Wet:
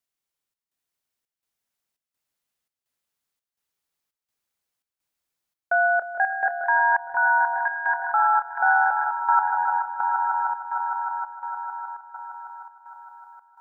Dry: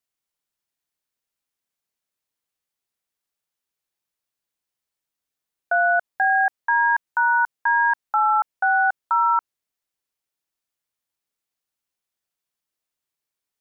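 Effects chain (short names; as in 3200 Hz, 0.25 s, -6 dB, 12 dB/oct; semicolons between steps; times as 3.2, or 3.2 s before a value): swelling echo 0.154 s, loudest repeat 5, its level -9 dB; chopper 1.4 Hz, depth 65%, duty 75%; gain -1 dB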